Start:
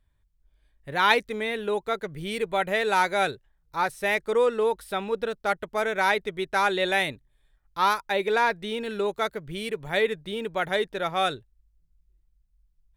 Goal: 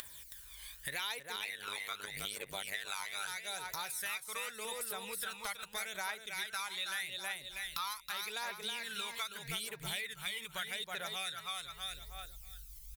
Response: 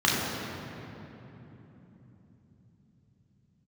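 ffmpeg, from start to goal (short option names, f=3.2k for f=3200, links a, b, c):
-filter_complex "[0:a]acompressor=mode=upward:threshold=-25dB:ratio=2.5,aecho=1:1:321|642|963|1284:0.562|0.18|0.0576|0.0184,asettb=1/sr,asplit=3[a][b][c];[a]atrim=end=1.364[d];[b]atrim=start=1.36:end=3.28,asetpts=PTS-STARTPTS,afade=t=in:d=0.004:c=qsin,afade=t=out:st=1.916:d=0.004:c=qsin,tremolo=f=100:d=0.919[e];[c]atrim=start=3.276[f];[d][e]acrossfade=d=0.004:c1=hsin:c2=qsin[g];[g][f]acrossfade=d=0.004:c1=qsin:c2=hsin,aphaser=in_gain=1:out_gain=1:delay=1:decay=0.55:speed=0.82:type=triangular,aderivative,acompressor=threshold=-49dB:ratio=6,asubboost=boost=9:cutoff=110,volume=11.5dB"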